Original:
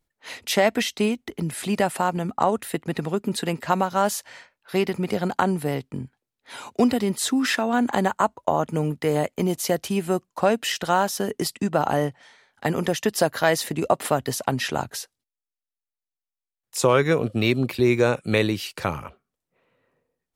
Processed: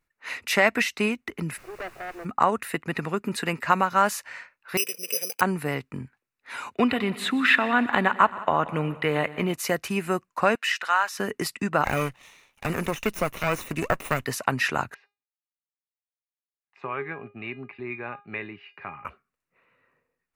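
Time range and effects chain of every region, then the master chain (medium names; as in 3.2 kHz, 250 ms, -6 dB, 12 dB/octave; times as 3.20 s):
1.56–2.24 s: Chebyshev band-pass 340–750 Hz, order 4 + valve stage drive 30 dB, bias 0.6 + added noise pink -51 dBFS
4.77–5.41 s: two resonant band-passes 1.2 kHz, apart 2.6 oct + careless resampling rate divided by 8×, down none, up zero stuff
6.74–9.54 s: resonant high shelf 4.4 kHz -7.5 dB, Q 3 + multi-head delay 61 ms, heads second and third, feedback 49%, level -19.5 dB
10.55–11.19 s: high-pass 1 kHz + treble shelf 8 kHz -9.5 dB
11.84–14.25 s: comb filter that takes the minimum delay 0.31 ms + treble shelf 5 kHz +10.5 dB + de-esser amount 65%
14.94–19.05 s: cabinet simulation 120–2600 Hz, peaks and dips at 490 Hz -9 dB, 740 Hz +5 dB, 1.4 kHz -5 dB + feedback comb 410 Hz, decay 0.26 s, mix 80%
whole clip: high-order bell 1.7 kHz +9 dB; band-stop 3.2 kHz, Q 8.5; trim -3.5 dB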